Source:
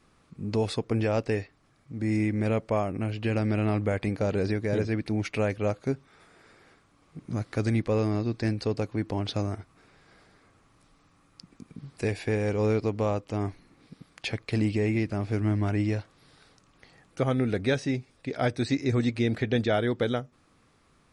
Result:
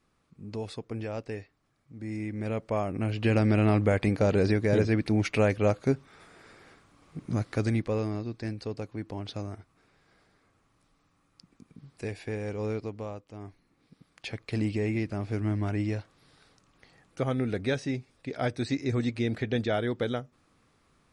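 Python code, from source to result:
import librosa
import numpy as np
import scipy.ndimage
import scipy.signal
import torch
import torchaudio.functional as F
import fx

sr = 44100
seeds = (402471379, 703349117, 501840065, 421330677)

y = fx.gain(x, sr, db=fx.line((2.18, -9.0), (3.27, 3.0), (7.24, 3.0), (8.32, -7.0), (12.75, -7.0), (13.33, -14.0), (14.61, -3.0)))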